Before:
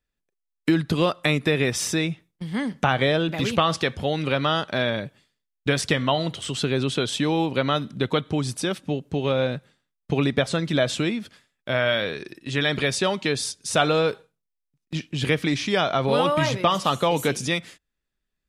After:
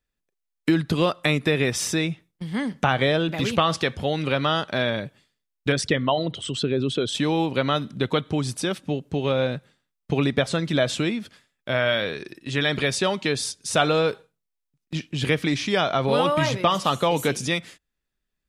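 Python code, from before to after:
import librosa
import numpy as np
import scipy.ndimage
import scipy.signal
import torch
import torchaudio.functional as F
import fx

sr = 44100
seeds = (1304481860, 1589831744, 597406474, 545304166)

y = fx.envelope_sharpen(x, sr, power=1.5, at=(5.72, 7.15))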